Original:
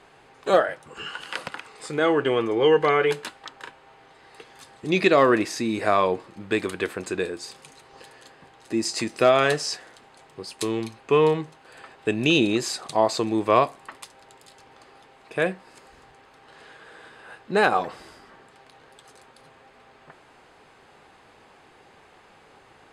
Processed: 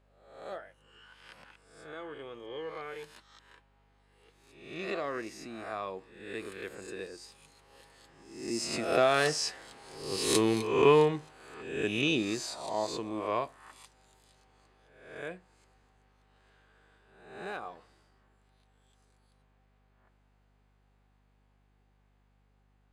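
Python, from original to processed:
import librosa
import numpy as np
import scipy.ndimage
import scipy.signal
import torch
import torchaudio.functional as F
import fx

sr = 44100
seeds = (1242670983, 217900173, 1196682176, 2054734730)

y = fx.spec_swells(x, sr, rise_s=0.77)
y = fx.doppler_pass(y, sr, speed_mps=9, closest_m=5.0, pass_at_s=10.31)
y = fx.add_hum(y, sr, base_hz=50, snr_db=33)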